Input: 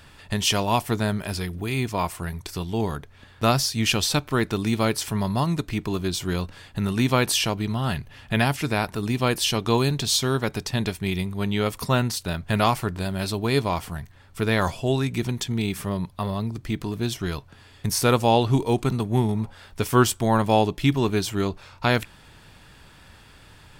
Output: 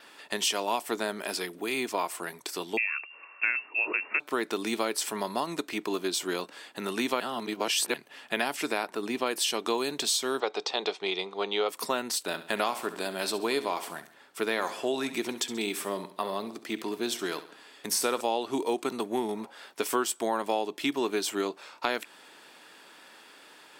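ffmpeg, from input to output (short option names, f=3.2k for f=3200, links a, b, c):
-filter_complex "[0:a]asettb=1/sr,asplit=3[a][b][c];[a]atrim=end=2.774[d];[b]atrim=start=2.77:end=4.2,asetpts=PTS-STARTPTS,afade=t=in:d=0.004:c=qsin,afade=t=out:st=1.426:d=0.004:c=qsin,lowpass=f=2.4k:t=q:w=0.5098,lowpass=f=2.4k:t=q:w=0.6013,lowpass=f=2.4k:t=q:w=0.9,lowpass=f=2.4k:t=q:w=2.563,afreqshift=-2800[e];[c]atrim=start=4.196[f];[d][e]acrossfade=d=0.004:c1=hsin:c2=qsin[g];[g][f]acrossfade=d=0.004:c1=qsin:c2=hsin,asettb=1/sr,asplit=3[h][i][j];[h]atrim=end=8.834[k];[i]atrim=start=8.83:end=9.26,asetpts=PTS-STARTPTS,afade=t=in:d=0.004:c=qsin,afade=t=out:st=0.426:d=0.004:c=qsin,highshelf=f=4.1k:g=-7[l];[j]atrim=start=9.256[m];[k][l]acrossfade=d=0.004:c1=hsin:c2=qsin[n];[n][m]acrossfade=d=0.004:c1=qsin:c2=hsin,asettb=1/sr,asplit=3[o][p][q];[o]atrim=end=10.404[r];[p]atrim=start=10.4:end=11.69,asetpts=PTS-STARTPTS,afade=t=in:d=0.004:c=qsin,afade=t=out:st=1.286:d=0.004:c=qsin,highpass=230,equalizer=f=250:t=q:w=4:g=-10,equalizer=f=460:t=q:w=4:g=7,equalizer=f=780:t=q:w=4:g=8,equalizer=f=1.2k:t=q:w=4:g=5,equalizer=f=1.7k:t=q:w=4:g=-6,equalizer=f=3.6k:t=q:w=4:g=6,lowpass=f=5.8k:w=0.5412,lowpass=f=5.8k:w=1.3066[s];[q]atrim=start=11.686[t];[r][s]acrossfade=d=0.004:c1=hsin:c2=qsin[u];[u][t]acrossfade=d=0.004:c1=qsin:c2=hsin,asettb=1/sr,asplit=3[v][w][x];[v]atrim=end=12.264[y];[w]atrim=start=12.26:end=18.21,asetpts=PTS-STARTPTS,afade=t=in:d=0.004:c=qsin,afade=t=out:st=5.946:d=0.004:c=qsin,aecho=1:1:67|134|201|268:0.2|0.0878|0.0386|0.017,atrim=end_sample=262395[z];[x]atrim=start=18.206[aa];[y][z]acrossfade=d=0.004:c1=hsin:c2=qsin[ab];[ab][aa]acrossfade=d=0.004:c1=qsin:c2=hsin,asplit=3[ac][ad][ae];[ac]atrim=end=7.202[af];[ad]atrim=start=7.198:end=7.942,asetpts=PTS-STARTPTS,areverse[ag];[ae]atrim=start=7.938[ah];[af][ag]acrossfade=d=0.004:c1=hsin:c2=hsin[ai];[ai][ah]acrossfade=d=0.004:c1=hsin:c2=hsin,highpass=f=290:w=0.5412,highpass=f=290:w=1.3066,adynamicequalizer=threshold=0.00282:dfrequency=8000:dqfactor=7.6:tfrequency=8000:tqfactor=7.6:attack=5:release=100:ratio=0.375:range=3.5:mode=boostabove:tftype=bell,acompressor=threshold=-25dB:ratio=4"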